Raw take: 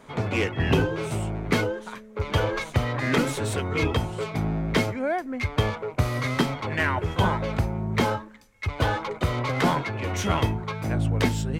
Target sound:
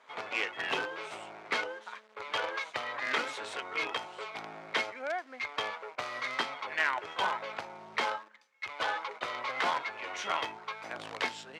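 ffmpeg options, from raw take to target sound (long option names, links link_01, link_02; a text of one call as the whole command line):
ffmpeg -i in.wav -filter_complex "[0:a]asplit=2[link_01][link_02];[link_02]acrusher=bits=4:dc=4:mix=0:aa=0.000001,volume=-8dB[link_03];[link_01][link_03]amix=inputs=2:normalize=0,highpass=800,lowpass=4600,volume=-5.5dB" out.wav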